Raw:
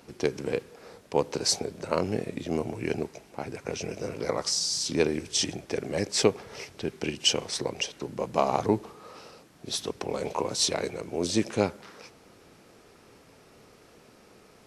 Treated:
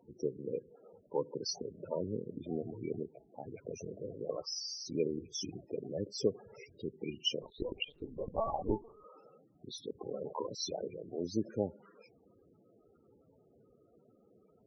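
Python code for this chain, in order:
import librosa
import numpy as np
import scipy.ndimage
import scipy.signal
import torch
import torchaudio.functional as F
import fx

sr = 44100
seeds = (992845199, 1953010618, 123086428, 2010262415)

y = fx.spec_topn(x, sr, count=16)
y = fx.lpc_vocoder(y, sr, seeds[0], excitation='pitch_kept', order=10, at=(7.42, 9.04))
y = y * 10.0 ** (-8.0 / 20.0)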